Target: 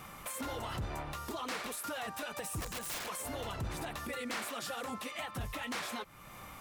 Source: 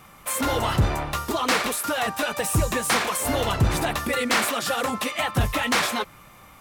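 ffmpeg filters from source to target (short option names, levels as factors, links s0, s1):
-filter_complex "[0:a]acompressor=threshold=0.00708:ratio=2,alimiter=level_in=2.11:limit=0.0631:level=0:latency=1:release=109,volume=0.473,asplit=3[s0][s1][s2];[s0]afade=t=out:st=2.6:d=0.02[s3];[s1]aeval=exprs='(mod(50.1*val(0)+1,2)-1)/50.1':c=same,afade=t=in:st=2.6:d=0.02,afade=t=out:st=3.06:d=0.02[s4];[s2]afade=t=in:st=3.06:d=0.02[s5];[s3][s4][s5]amix=inputs=3:normalize=0"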